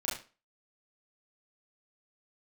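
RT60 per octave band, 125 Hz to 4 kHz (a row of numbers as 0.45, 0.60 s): 0.30, 0.35, 0.35, 0.35, 0.30, 0.30 s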